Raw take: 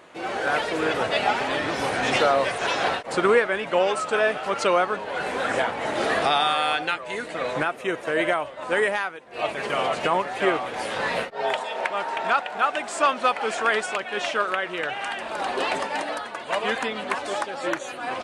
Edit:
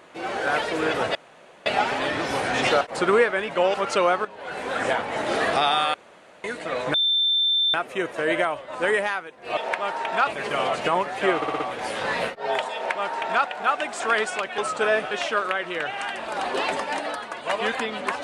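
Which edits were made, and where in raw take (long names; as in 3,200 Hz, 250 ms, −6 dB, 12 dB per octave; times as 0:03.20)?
0:01.15: splice in room tone 0.51 s
0:02.30–0:02.97: remove
0:03.90–0:04.43: move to 0:14.14
0:04.94–0:05.55: fade in linear, from −12.5 dB
0:06.63–0:07.13: fill with room tone
0:07.63: insert tone 3,560 Hz −18 dBFS 0.80 s
0:10.55: stutter 0.06 s, 5 plays
0:11.69–0:12.39: duplicate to 0:09.46
0:12.95–0:13.56: remove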